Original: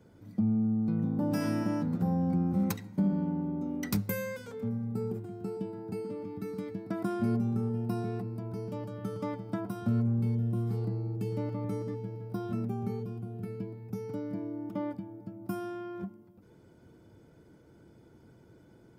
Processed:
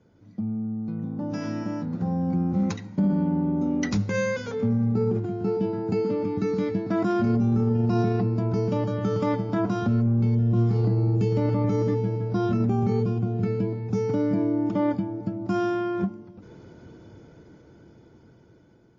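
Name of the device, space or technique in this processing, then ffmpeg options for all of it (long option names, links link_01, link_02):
low-bitrate web radio: -filter_complex "[0:a]asettb=1/sr,asplit=3[link_01][link_02][link_03];[link_01]atrim=end=4.954[link_04];[link_02]atrim=start=4.95:end=5.62,asetpts=PTS-STARTPTS,afade=type=in:duration=0.004:curve=qsin,afade=type=out:start_time=0.666:duration=0.004:curve=qsin,highshelf=frequency=5800:gain=-8.5[link_05];[link_03]atrim=start=5.616[link_06];[link_04][link_05]acrossfade=duration=0.004:curve1=hsin:curve2=qsin[link_07];[link_07][link_06]acrossfade=duration=0.004:curve1=qsin:curve2=hsin,dynaudnorm=framelen=930:gausssize=7:maxgain=16dB,alimiter=limit=-14dB:level=0:latency=1:release=22,volume=-1.5dB" -ar 16000 -c:a libmp3lame -b:a 32k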